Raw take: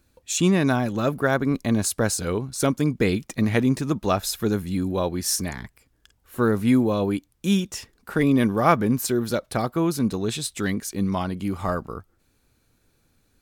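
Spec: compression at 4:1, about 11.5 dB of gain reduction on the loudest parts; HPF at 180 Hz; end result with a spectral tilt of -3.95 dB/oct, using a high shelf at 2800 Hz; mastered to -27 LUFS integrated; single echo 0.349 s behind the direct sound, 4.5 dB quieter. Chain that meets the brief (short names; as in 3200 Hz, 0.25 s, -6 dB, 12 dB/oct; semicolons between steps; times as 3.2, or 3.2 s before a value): HPF 180 Hz; high shelf 2800 Hz +6.5 dB; compressor 4:1, threshold -25 dBFS; echo 0.349 s -4.5 dB; gain +1 dB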